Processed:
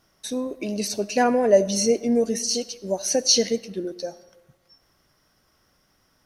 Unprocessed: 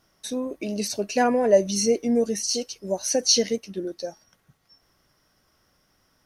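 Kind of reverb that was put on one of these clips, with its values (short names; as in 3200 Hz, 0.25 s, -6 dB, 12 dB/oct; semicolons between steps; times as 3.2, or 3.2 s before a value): digital reverb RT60 1.2 s, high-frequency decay 0.65×, pre-delay 35 ms, DRR 17 dB; gain +1 dB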